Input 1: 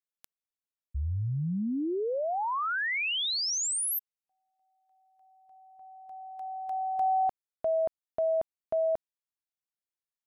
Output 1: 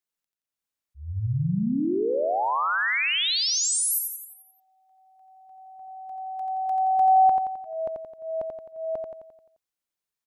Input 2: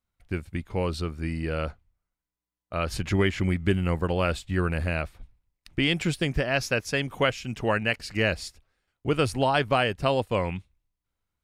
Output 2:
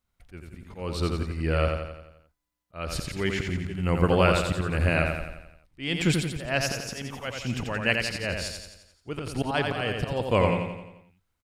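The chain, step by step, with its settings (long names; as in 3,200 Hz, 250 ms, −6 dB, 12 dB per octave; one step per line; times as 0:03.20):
volume swells 332 ms
repeating echo 87 ms, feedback 53%, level −4.5 dB
level +4 dB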